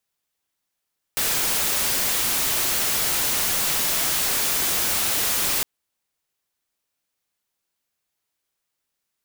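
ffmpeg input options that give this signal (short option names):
-f lavfi -i "anoisesrc=c=white:a=0.13:d=4.46:r=44100:seed=1"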